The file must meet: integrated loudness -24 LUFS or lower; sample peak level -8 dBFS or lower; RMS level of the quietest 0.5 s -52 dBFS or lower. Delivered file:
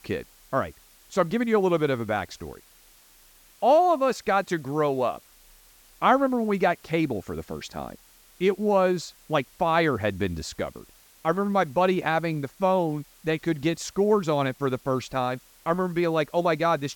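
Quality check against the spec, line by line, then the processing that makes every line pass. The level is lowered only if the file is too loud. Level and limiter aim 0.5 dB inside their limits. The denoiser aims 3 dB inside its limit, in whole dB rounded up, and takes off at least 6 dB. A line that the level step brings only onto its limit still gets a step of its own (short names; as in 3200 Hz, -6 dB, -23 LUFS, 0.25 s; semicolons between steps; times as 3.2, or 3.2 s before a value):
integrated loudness -25.5 LUFS: OK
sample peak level -7.5 dBFS: fail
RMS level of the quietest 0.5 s -55 dBFS: OK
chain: limiter -8.5 dBFS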